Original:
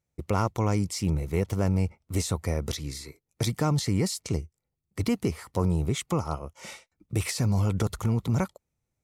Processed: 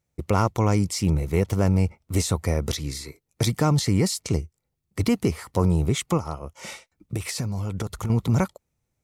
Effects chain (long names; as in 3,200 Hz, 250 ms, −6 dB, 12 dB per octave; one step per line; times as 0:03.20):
0:06.17–0:08.10: downward compressor 6 to 1, threshold −30 dBFS, peak gain reduction 9 dB
level +4.5 dB